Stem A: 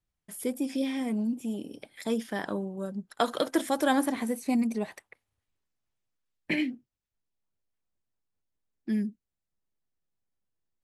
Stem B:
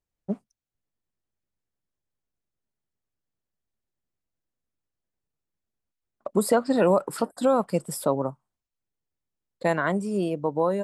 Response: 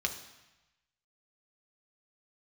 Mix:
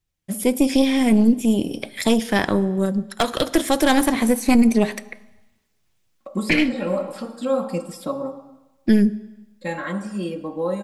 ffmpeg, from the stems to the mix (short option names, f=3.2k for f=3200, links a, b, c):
-filter_complex "[0:a]dynaudnorm=f=190:g=5:m=12dB,aeval=exprs='0.794*(cos(1*acos(clip(val(0)/0.794,-1,1)))-cos(1*PI/2))+0.141*(cos(6*acos(clip(val(0)/0.794,-1,1)))-cos(6*PI/2))+0.0562*(cos(8*acos(clip(val(0)/0.794,-1,1)))-cos(8*PI/2))':c=same,volume=3dB,asplit=3[a][b][c];[b]volume=-13.5dB[d];[1:a]acrossover=split=5200[e][f];[f]acompressor=threshold=-44dB:ratio=4:attack=1:release=60[g];[e][g]amix=inputs=2:normalize=0,aecho=1:1:3.7:0.79,volume=-4dB,asplit=2[h][i];[i]volume=-4.5dB[j];[c]apad=whole_len=478060[k];[h][k]sidechaincompress=threshold=-22dB:ratio=8:attack=16:release=1300[l];[2:a]atrim=start_sample=2205[m];[d][j]amix=inputs=2:normalize=0[n];[n][m]afir=irnorm=-1:irlink=0[o];[a][l][o]amix=inputs=3:normalize=0,alimiter=limit=-5.5dB:level=0:latency=1:release=361"